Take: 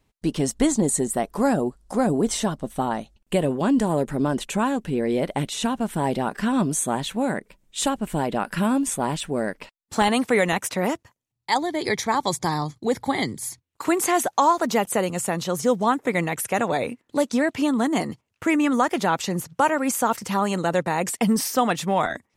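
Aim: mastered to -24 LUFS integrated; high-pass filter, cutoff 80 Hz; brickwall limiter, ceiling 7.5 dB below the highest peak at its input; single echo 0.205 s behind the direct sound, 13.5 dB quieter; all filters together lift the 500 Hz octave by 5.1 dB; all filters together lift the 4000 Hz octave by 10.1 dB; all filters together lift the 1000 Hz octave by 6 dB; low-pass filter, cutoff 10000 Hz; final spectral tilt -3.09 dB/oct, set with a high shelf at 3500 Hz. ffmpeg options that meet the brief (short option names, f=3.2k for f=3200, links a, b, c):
-af "highpass=80,lowpass=10k,equalizer=f=500:t=o:g=4.5,equalizer=f=1k:t=o:g=5,highshelf=f=3.5k:g=8,equalizer=f=4k:t=o:g=7,alimiter=limit=-7.5dB:level=0:latency=1,aecho=1:1:205:0.211,volume=-4dB"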